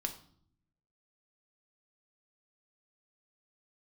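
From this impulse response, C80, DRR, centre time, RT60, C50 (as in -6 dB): 15.0 dB, 3.5 dB, 11 ms, 0.60 s, 11.5 dB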